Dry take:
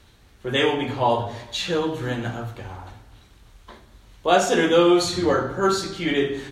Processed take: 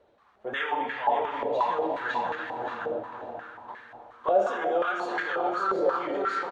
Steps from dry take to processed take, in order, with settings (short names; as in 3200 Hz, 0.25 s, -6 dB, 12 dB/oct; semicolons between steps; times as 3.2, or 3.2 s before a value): flange 1.5 Hz, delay 1.9 ms, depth 3.8 ms, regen +53%; feedback echo 0.558 s, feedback 29%, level -3.5 dB; on a send at -6.5 dB: reverb RT60 5.0 s, pre-delay 22 ms; on the sum: maximiser +18.5 dB; stepped band-pass 5.6 Hz 570–1700 Hz; gain -7.5 dB